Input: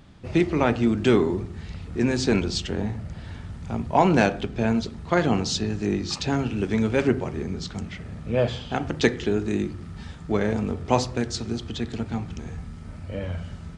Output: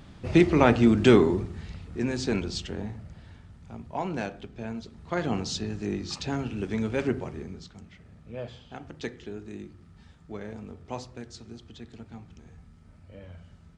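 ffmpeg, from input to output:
-af "volume=9dB,afade=t=out:st=1.07:d=0.78:silence=0.398107,afade=t=out:st=2.6:d=0.86:silence=0.446684,afade=t=in:st=4.84:d=0.51:silence=0.446684,afade=t=out:st=7.24:d=0.48:silence=0.354813"

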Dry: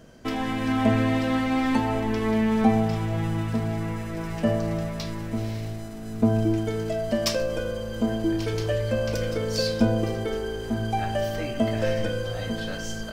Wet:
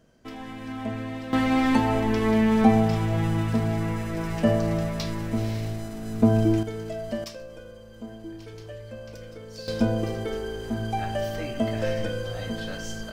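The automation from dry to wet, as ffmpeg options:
-af "asetnsamples=n=441:p=0,asendcmd='1.33 volume volume 2dB;6.63 volume volume -5.5dB;7.24 volume volume -14.5dB;9.68 volume volume -2dB',volume=-10.5dB"

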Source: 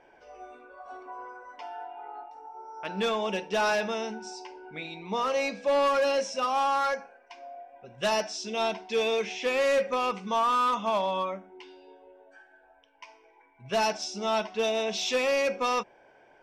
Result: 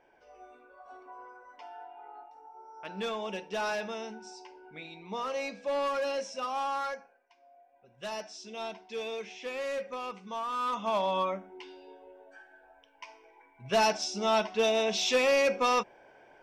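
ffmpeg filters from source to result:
-af "volume=12.5dB,afade=t=out:st=6.8:d=0.55:silence=0.266073,afade=t=in:st=7.35:d=0.98:silence=0.398107,afade=t=in:st=10.49:d=0.8:silence=0.281838"

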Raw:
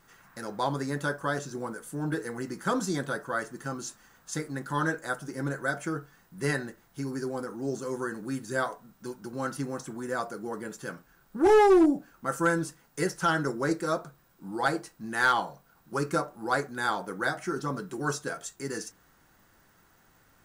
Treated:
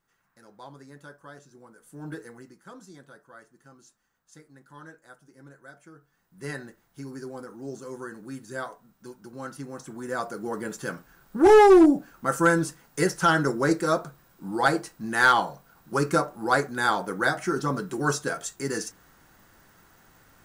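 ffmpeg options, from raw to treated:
-af "volume=17dB,afade=t=in:st=1.72:d=0.39:silence=0.316228,afade=t=out:st=2.11:d=0.48:silence=0.251189,afade=t=in:st=5.98:d=0.65:silence=0.223872,afade=t=in:st=9.67:d=1.03:silence=0.316228"

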